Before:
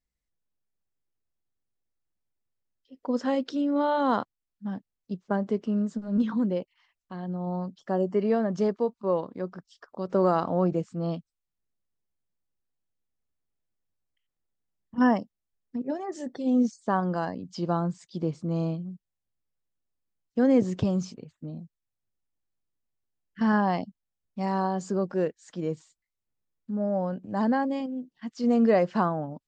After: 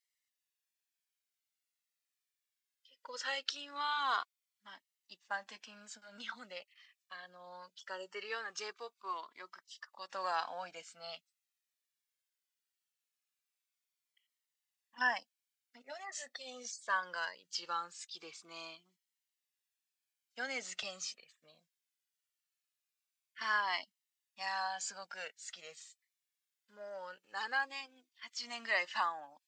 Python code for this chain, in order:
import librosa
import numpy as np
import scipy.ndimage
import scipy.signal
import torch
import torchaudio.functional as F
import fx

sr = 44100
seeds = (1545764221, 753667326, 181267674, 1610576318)

y = scipy.signal.sosfilt(scipy.signal.cheby1(2, 1.0, 2200.0, 'highpass', fs=sr, output='sos'), x)
y = fx.comb_cascade(y, sr, direction='falling', hz=0.21)
y = F.gain(torch.from_numpy(y), 10.0).numpy()